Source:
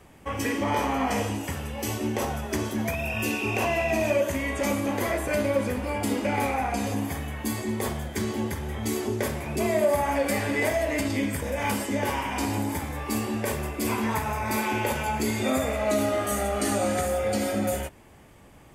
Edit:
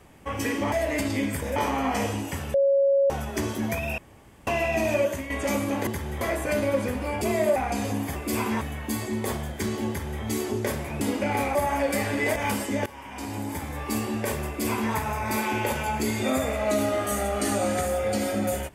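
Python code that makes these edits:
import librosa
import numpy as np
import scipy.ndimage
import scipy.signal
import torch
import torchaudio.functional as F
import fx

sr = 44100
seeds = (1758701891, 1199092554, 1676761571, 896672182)

y = fx.edit(x, sr, fx.bleep(start_s=1.7, length_s=0.56, hz=553.0, db=-17.0),
    fx.room_tone_fill(start_s=3.14, length_s=0.49),
    fx.fade_out_to(start_s=4.2, length_s=0.26, floor_db=-9.5),
    fx.swap(start_s=6.04, length_s=0.54, other_s=9.57, other_length_s=0.34),
    fx.duplicate(start_s=8.44, length_s=0.34, to_s=5.03),
    fx.move(start_s=10.72, length_s=0.84, to_s=0.72),
    fx.fade_in_from(start_s=12.06, length_s=0.96, floor_db=-20.0),
    fx.duplicate(start_s=13.67, length_s=0.46, to_s=7.17), tone=tone)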